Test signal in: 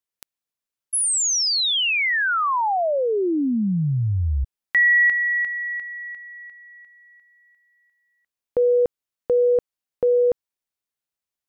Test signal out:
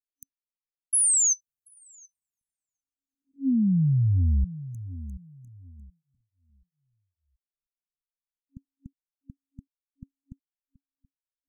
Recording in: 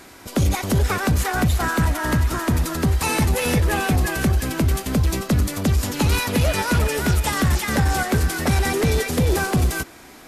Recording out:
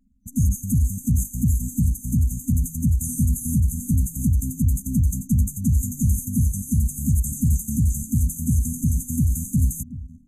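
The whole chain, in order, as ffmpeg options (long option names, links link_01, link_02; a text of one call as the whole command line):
ffmpeg -i in.wav -filter_complex "[0:a]asplit=2[link_01][link_02];[link_02]adelay=728,lowpass=frequency=2200:poles=1,volume=-15dB,asplit=2[link_03][link_04];[link_04]adelay=728,lowpass=frequency=2200:poles=1,volume=0.4,asplit=2[link_05][link_06];[link_06]adelay=728,lowpass=frequency=2200:poles=1,volume=0.4,asplit=2[link_07][link_08];[link_08]adelay=728,lowpass=frequency=2200:poles=1,volume=0.4[link_09];[link_01][link_03][link_05][link_07][link_09]amix=inputs=5:normalize=0,acrossover=split=410|1200[link_10][link_11][link_12];[link_11]acompressor=threshold=-40dB:ratio=6:release=789:detection=rms[link_13];[link_10][link_13][link_12]amix=inputs=3:normalize=0,anlmdn=2.51,afftfilt=real='re*(1-between(b*sr/4096,270,6100))':imag='im*(1-between(b*sr/4096,270,6100))':win_size=4096:overlap=0.75" out.wav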